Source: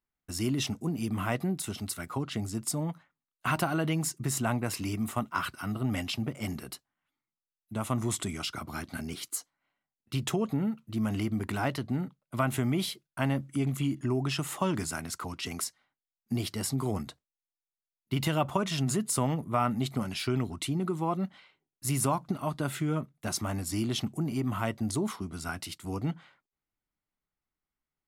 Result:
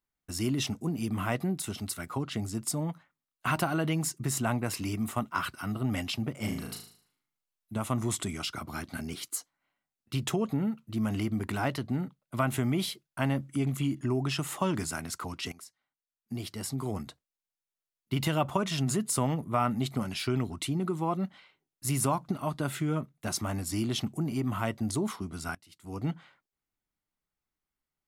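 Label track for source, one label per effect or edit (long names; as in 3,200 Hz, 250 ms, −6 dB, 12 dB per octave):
6.360000	7.780000	flutter between parallel walls apart 6.4 metres, dies away in 0.53 s
15.520000	18.310000	fade in equal-power, from −18 dB
25.550000	26.050000	fade in quadratic, from −23.5 dB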